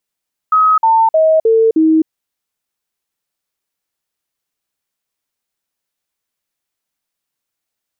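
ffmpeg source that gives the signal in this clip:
-f lavfi -i "aevalsrc='0.447*clip(min(mod(t,0.31),0.26-mod(t,0.31))/0.005,0,1)*sin(2*PI*1270*pow(2,-floor(t/0.31)/2)*mod(t,0.31))':d=1.55:s=44100"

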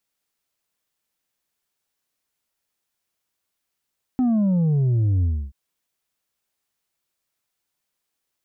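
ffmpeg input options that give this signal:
-f lavfi -i "aevalsrc='0.141*clip((1.33-t)/0.29,0,1)*tanh(1.58*sin(2*PI*260*1.33/log(65/260)*(exp(log(65/260)*t/1.33)-1)))/tanh(1.58)':d=1.33:s=44100"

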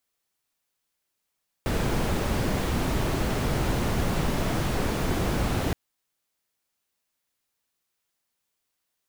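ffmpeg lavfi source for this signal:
-f lavfi -i "anoisesrc=c=brown:a=0.263:d=4.07:r=44100:seed=1"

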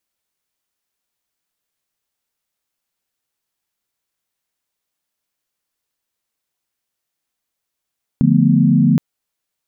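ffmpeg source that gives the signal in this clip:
-f lavfi -i "aevalsrc='0.178*(sin(2*PI*146.83*t)+sin(2*PI*174.61*t)+sin(2*PI*220*t)+sin(2*PI*246.94*t))':d=0.77:s=44100"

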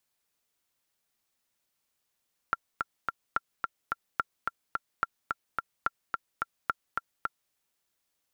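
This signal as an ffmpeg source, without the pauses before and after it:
-f lavfi -i "aevalsrc='pow(10,(-12.5-3.5*gte(mod(t,3*60/216),60/216))/20)*sin(2*PI*1370*mod(t,60/216))*exp(-6.91*mod(t,60/216)/0.03)':d=5:s=44100"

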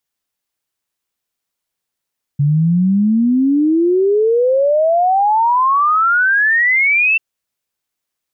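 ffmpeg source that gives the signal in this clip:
-f lavfi -i "aevalsrc='0.316*clip(min(t,4.79-t)/0.01,0,1)*sin(2*PI*140*4.79/log(2700/140)*(exp(log(2700/140)*t/4.79)-1))':d=4.79:s=44100"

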